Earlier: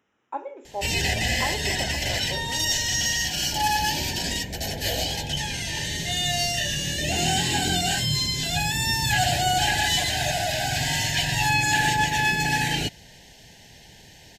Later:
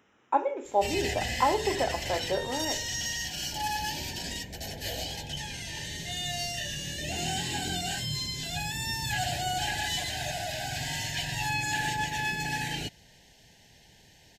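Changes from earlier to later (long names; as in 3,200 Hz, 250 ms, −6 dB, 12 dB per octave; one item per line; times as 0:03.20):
speech +7.0 dB
background −8.5 dB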